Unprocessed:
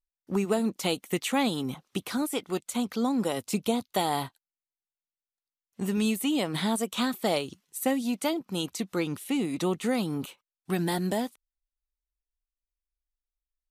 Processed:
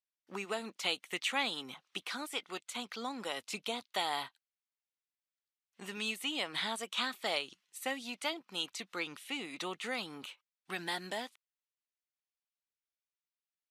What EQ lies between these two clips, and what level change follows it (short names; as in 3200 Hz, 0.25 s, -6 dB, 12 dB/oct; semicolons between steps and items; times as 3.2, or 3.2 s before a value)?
band-pass 2500 Hz, Q 0.78; 0.0 dB